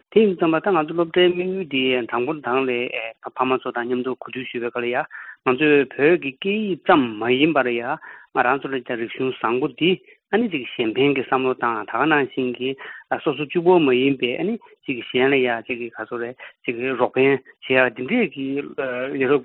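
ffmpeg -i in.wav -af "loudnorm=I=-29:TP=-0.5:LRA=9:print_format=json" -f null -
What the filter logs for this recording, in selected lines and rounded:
"input_i" : "-21.1",
"input_tp" : "-1.9",
"input_lra" : "2.7",
"input_thresh" : "-31.2",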